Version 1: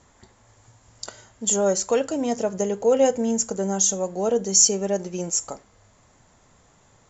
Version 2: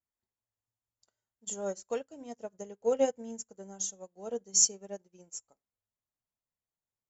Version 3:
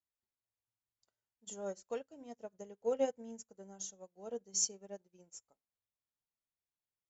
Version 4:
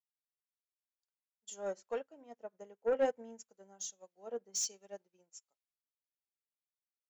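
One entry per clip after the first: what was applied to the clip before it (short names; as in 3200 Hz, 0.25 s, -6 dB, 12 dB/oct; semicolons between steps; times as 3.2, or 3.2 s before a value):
upward expander 2.5:1, over -38 dBFS; gain -6 dB
LPF 6200 Hz 12 dB/oct; gain -6 dB
overdrive pedal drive 18 dB, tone 2800 Hz, clips at -20 dBFS; three-band expander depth 70%; gain -7 dB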